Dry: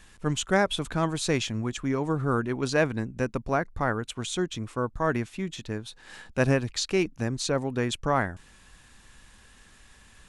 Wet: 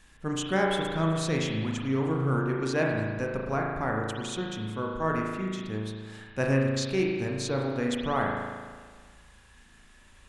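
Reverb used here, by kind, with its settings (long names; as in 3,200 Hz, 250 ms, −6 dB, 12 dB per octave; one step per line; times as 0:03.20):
spring reverb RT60 1.6 s, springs 37 ms, chirp 65 ms, DRR −1 dB
level −5 dB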